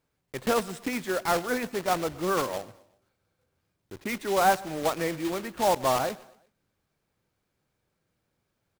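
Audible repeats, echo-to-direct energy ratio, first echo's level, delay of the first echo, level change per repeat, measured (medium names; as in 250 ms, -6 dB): 2, -21.5 dB, -22.5 dB, 122 ms, -6.5 dB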